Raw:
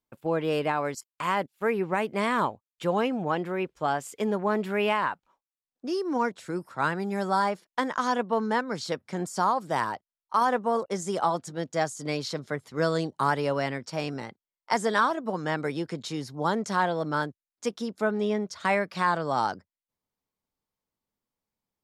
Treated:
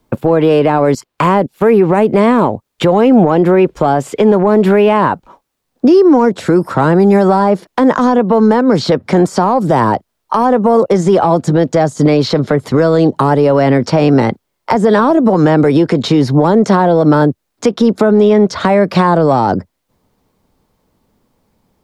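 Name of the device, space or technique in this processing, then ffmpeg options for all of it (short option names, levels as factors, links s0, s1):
mastering chain: -filter_complex "[0:a]equalizer=f=4000:t=o:w=0.77:g=2,acrossover=split=250|730|4500[s0][s1][s2][s3];[s0]acompressor=threshold=0.00891:ratio=4[s4];[s1]acompressor=threshold=0.0316:ratio=4[s5];[s2]acompressor=threshold=0.0158:ratio=4[s6];[s3]acompressor=threshold=0.002:ratio=4[s7];[s4][s5][s6][s7]amix=inputs=4:normalize=0,acompressor=threshold=0.0178:ratio=2.5,asoftclip=type=tanh:threshold=0.0562,tiltshelf=f=1200:g=6.5,alimiter=level_in=22.4:limit=0.891:release=50:level=0:latency=1,volume=0.891"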